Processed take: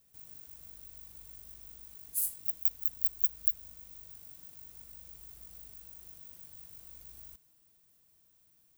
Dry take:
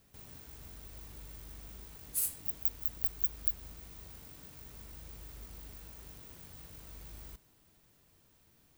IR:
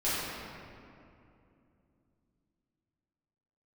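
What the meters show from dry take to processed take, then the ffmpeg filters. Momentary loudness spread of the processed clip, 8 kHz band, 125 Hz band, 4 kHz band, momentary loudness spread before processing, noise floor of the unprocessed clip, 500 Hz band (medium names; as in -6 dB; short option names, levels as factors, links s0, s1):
19 LU, -0.5 dB, under -10 dB, no reading, 18 LU, -67 dBFS, under -10 dB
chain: -af "crystalizer=i=2:c=0,volume=0.299"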